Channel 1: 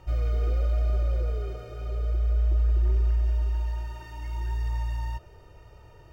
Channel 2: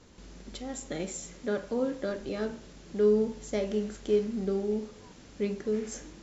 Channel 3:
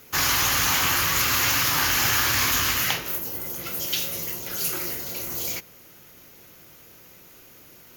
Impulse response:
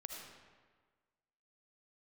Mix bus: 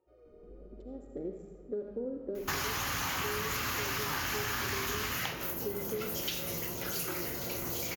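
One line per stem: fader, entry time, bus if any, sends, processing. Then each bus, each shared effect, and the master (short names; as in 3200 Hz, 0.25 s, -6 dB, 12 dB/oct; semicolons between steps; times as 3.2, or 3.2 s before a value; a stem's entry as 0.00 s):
-8.0 dB, 0.00 s, bus A, send -24 dB, low shelf 270 Hz -11.5 dB
-2.5 dB, 0.25 s, bus A, send -14.5 dB, Wiener smoothing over 15 samples; tilt -3.5 dB/oct
+1.5 dB, 2.35 s, no bus, no send, high shelf 2300 Hz -7.5 dB
bus A: 0.0 dB, band-pass 400 Hz, Q 4.1; compressor, threshold -31 dBFS, peak gain reduction 11.5 dB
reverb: on, RT60 1.5 s, pre-delay 35 ms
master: compressor 5:1, threshold -32 dBFS, peak gain reduction 11.5 dB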